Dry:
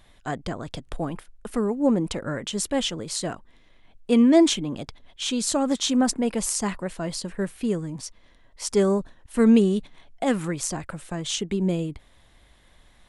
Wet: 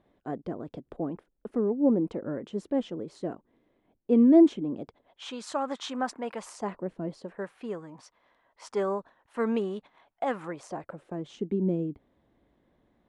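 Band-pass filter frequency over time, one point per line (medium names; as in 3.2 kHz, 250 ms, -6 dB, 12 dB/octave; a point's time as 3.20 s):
band-pass filter, Q 1.2
4.79 s 350 Hz
5.37 s 1.1 kHz
6.43 s 1.1 kHz
6.97 s 240 Hz
7.45 s 950 Hz
10.34 s 950 Hz
11.37 s 300 Hz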